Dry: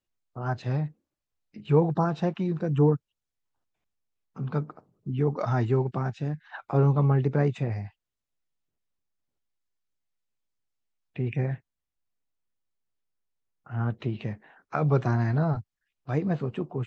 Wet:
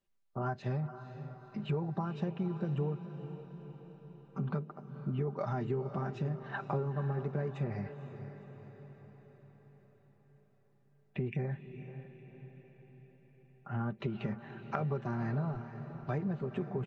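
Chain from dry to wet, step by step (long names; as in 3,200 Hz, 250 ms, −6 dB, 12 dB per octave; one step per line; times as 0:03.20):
high-shelf EQ 3,100 Hz −8 dB
comb filter 5.1 ms, depth 55%
downward compressor 10 to 1, threshold −33 dBFS, peak gain reduction 17.5 dB
on a send: feedback delay with all-pass diffusion 496 ms, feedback 56%, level −11 dB
on the sum: level +1.5 dB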